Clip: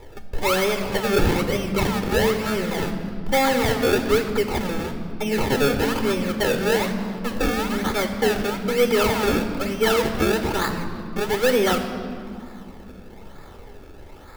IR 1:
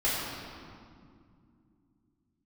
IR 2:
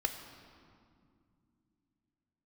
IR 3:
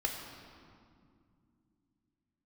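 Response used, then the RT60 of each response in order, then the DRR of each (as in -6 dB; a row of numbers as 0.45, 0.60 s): 2; 2.3, 2.3, 2.3 s; -8.5, 6.0, 1.5 dB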